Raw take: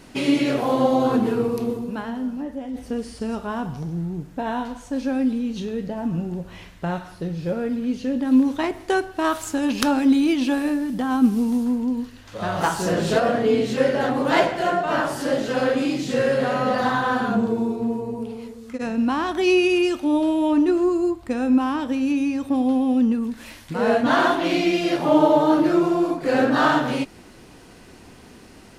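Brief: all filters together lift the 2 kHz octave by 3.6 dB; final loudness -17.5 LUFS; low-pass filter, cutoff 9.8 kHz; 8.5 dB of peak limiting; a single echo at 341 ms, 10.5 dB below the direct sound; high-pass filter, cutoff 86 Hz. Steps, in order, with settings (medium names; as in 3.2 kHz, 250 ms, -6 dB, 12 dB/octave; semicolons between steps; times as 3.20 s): high-pass 86 Hz; low-pass 9.8 kHz; peaking EQ 2 kHz +5 dB; peak limiter -11 dBFS; delay 341 ms -10.5 dB; trim +4.5 dB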